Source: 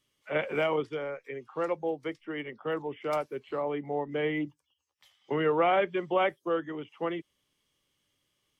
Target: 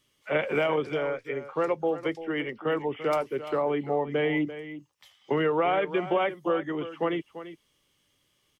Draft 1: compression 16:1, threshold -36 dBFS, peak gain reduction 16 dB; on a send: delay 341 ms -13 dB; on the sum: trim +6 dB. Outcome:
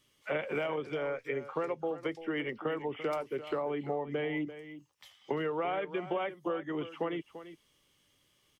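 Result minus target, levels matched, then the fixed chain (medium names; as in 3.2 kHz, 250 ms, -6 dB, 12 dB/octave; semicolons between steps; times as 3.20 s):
compression: peak gain reduction +8.5 dB
compression 16:1, threshold -27 dBFS, peak gain reduction 7.5 dB; on a send: delay 341 ms -13 dB; on the sum: trim +6 dB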